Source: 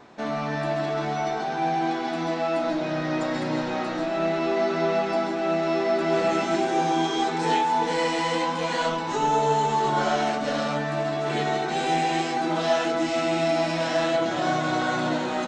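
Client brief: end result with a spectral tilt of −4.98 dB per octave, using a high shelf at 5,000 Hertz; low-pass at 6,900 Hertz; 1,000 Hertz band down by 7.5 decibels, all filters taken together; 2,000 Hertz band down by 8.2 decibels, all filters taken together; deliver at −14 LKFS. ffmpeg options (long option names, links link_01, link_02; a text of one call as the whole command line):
ffmpeg -i in.wav -af "lowpass=6900,equalizer=frequency=1000:width_type=o:gain=-9,equalizer=frequency=2000:width_type=o:gain=-6.5,highshelf=frequency=5000:gain=-6.5,volume=14.5dB" out.wav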